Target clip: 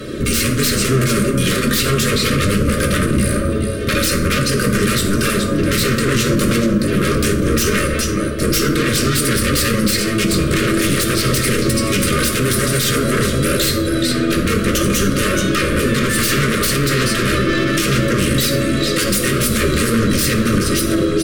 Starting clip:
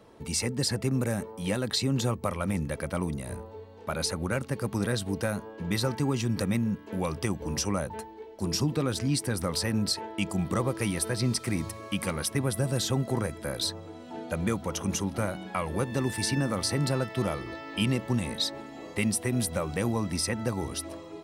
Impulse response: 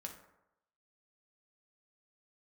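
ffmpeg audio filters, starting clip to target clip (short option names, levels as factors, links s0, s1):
-filter_complex "[0:a]aecho=1:1:3.3:0.71,asplit=2[s0][s1];[s1]acompressor=threshold=0.0126:ratio=20,volume=0.75[s2];[s0][s2]amix=inputs=2:normalize=0,aecho=1:1:425:0.211,aeval=exprs='0.0422*(abs(mod(val(0)/0.0422+3,4)-2)-1)':c=same,aeval=exprs='(tanh(63.1*val(0)+0.3)-tanh(0.3))/63.1':c=same,asplit=2[s3][s4];[s4]asetrate=22050,aresample=44100,atempo=2,volume=0.316[s5];[s3][s5]amix=inputs=2:normalize=0,asuperstop=centerf=820:order=8:qfactor=1.4[s6];[1:a]atrim=start_sample=2205,asetrate=32634,aresample=44100[s7];[s6][s7]afir=irnorm=-1:irlink=0,alimiter=level_in=37.6:limit=0.891:release=50:level=0:latency=1,volume=0.531"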